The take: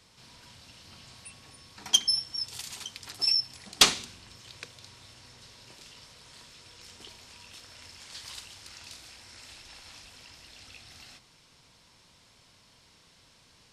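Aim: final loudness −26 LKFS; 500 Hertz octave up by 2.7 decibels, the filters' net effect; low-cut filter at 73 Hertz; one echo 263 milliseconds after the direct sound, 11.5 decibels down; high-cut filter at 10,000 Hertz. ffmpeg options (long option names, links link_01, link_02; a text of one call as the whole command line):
ffmpeg -i in.wav -af "highpass=73,lowpass=10000,equalizer=frequency=500:width_type=o:gain=3.5,aecho=1:1:263:0.266,volume=0.5dB" out.wav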